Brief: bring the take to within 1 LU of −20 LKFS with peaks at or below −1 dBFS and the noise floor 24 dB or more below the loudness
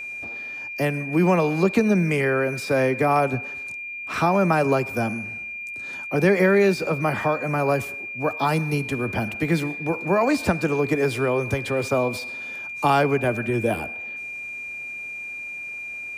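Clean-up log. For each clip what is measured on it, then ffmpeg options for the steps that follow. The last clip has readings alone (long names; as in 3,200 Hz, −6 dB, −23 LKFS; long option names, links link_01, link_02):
interfering tone 2,400 Hz; level of the tone −31 dBFS; integrated loudness −23.5 LKFS; sample peak −7.0 dBFS; target loudness −20.0 LKFS
→ -af "bandreject=frequency=2400:width=30"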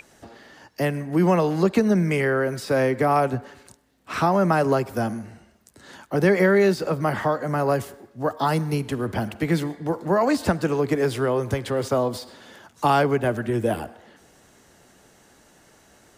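interfering tone none found; integrated loudness −22.5 LKFS; sample peak −7.0 dBFS; target loudness −20.0 LKFS
→ -af "volume=2.5dB"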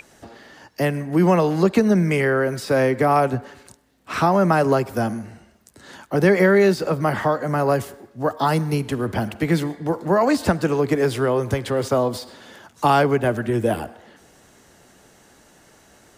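integrated loudness −20.0 LKFS; sample peak −4.5 dBFS; background noise floor −54 dBFS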